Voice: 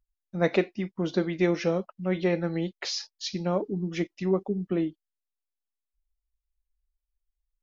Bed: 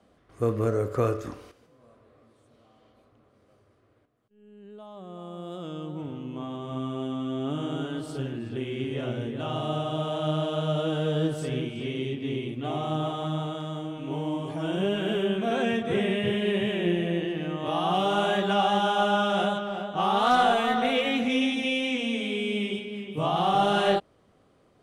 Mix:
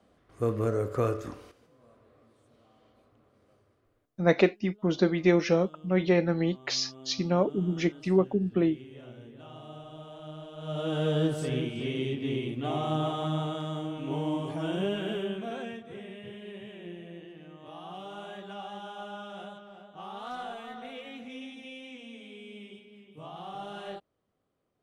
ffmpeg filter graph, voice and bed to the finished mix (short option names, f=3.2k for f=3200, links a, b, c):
-filter_complex "[0:a]adelay=3850,volume=2dB[a];[1:a]volume=13dB,afade=t=out:st=3.49:d=0.79:silence=0.211349,afade=t=in:st=10.57:d=0.47:silence=0.16788,afade=t=out:st=14.35:d=1.51:silence=0.141254[b];[a][b]amix=inputs=2:normalize=0"